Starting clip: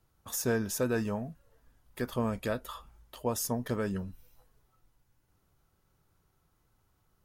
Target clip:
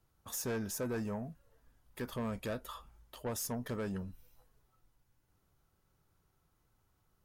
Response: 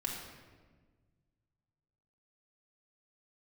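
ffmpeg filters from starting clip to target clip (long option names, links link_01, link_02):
-filter_complex "[0:a]asoftclip=type=tanh:threshold=-28.5dB,asettb=1/sr,asplit=3[link_01][link_02][link_03];[link_01]atrim=end=0.714[link_04];[link_02]atrim=start=0.71:end=1.23,asetpts=PTS-STARTPTS,afade=type=in:duration=0.004:curve=qsin,afade=type=out:start_time=0.516:duration=0.004:curve=qsin,equalizer=frequency=3200:width_type=o:width=0.77:gain=-6[link_05];[link_03]atrim=start=1.226[link_06];[link_04][link_05]acrossfade=duration=0.004:curve1=hsin:curve2=qsin[link_07];[link_07][link_06]acrossfade=duration=0.004:curve1=qsin:curve2=hsin,volume=-3dB"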